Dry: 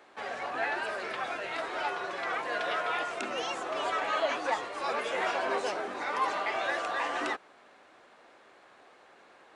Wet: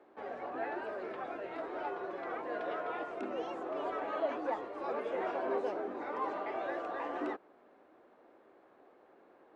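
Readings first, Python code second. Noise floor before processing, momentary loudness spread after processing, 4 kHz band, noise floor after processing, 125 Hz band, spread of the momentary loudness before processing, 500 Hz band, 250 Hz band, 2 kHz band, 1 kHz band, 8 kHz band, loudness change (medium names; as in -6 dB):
-58 dBFS, 6 LU, -18.0 dB, -63 dBFS, no reading, 5 LU, -2.0 dB, +1.5 dB, -12.5 dB, -7.0 dB, under -20 dB, -6.0 dB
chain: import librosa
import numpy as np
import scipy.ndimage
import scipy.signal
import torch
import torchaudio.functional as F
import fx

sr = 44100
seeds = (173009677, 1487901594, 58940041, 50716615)

y = fx.curve_eq(x, sr, hz=(150.0, 320.0, 7700.0), db=(0, 8, -20))
y = F.gain(torch.from_numpy(y), -5.5).numpy()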